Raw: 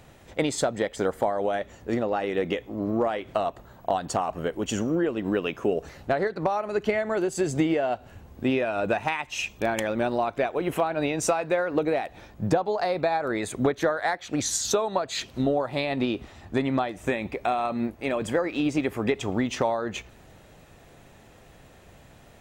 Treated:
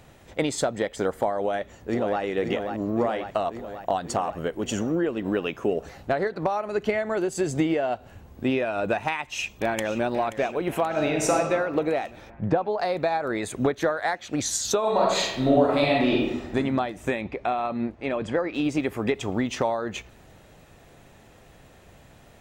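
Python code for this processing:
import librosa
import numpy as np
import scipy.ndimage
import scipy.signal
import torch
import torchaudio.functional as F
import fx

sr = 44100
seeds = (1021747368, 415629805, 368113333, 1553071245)

y = fx.echo_throw(x, sr, start_s=1.4, length_s=0.82, ms=540, feedback_pct=70, wet_db=-6.0)
y = fx.echo_throw(y, sr, start_s=9.08, length_s=0.95, ms=530, feedback_pct=70, wet_db=-13.5)
y = fx.reverb_throw(y, sr, start_s=10.86, length_s=0.48, rt60_s=1.6, drr_db=1.0)
y = fx.lowpass(y, sr, hz=fx.line((12.29, 1800.0), (12.78, 3500.0)), slope=12, at=(12.29, 12.78), fade=0.02)
y = fx.reverb_throw(y, sr, start_s=14.79, length_s=1.76, rt60_s=1.0, drr_db=-4.5)
y = fx.air_absorb(y, sr, metres=110.0, at=(17.21, 18.54))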